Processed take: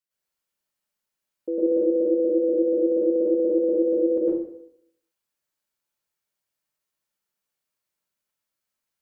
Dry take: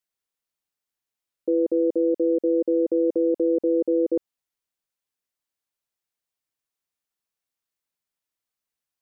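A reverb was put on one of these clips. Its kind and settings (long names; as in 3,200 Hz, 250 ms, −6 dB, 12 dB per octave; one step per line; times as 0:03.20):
dense smooth reverb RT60 0.72 s, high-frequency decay 0.8×, pre-delay 95 ms, DRR −9 dB
level −5.5 dB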